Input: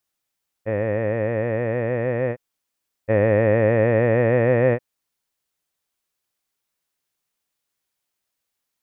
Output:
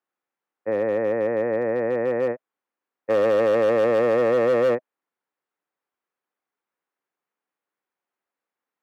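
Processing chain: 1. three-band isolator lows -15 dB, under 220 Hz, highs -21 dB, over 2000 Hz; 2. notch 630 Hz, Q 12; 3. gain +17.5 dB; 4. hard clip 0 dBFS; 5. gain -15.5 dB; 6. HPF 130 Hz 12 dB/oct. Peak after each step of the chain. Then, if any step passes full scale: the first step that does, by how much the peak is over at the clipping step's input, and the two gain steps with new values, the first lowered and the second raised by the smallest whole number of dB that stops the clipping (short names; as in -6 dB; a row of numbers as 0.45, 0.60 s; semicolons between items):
-8.5, -9.0, +8.5, 0.0, -15.5, -12.0 dBFS; step 3, 8.5 dB; step 3 +8.5 dB, step 5 -6.5 dB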